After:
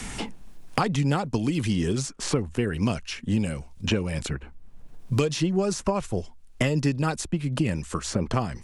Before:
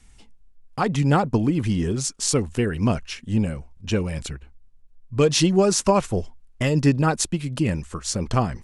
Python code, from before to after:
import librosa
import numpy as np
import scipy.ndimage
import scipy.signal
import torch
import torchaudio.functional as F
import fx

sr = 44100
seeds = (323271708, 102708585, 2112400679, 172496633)

y = fx.band_squash(x, sr, depth_pct=100)
y = y * 10.0 ** (-4.5 / 20.0)